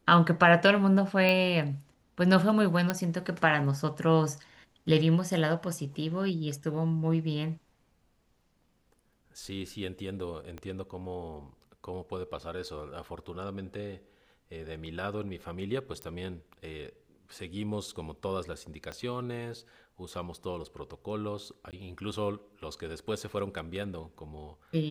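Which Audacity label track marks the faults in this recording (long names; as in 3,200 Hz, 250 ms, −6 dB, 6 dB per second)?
1.290000	1.290000	click −15 dBFS
2.900000	2.900000	click −12 dBFS
10.580000	10.580000	click −27 dBFS
16.020000	16.020000	click −22 dBFS
18.920000	18.920000	click −25 dBFS
21.710000	21.730000	drop-out 18 ms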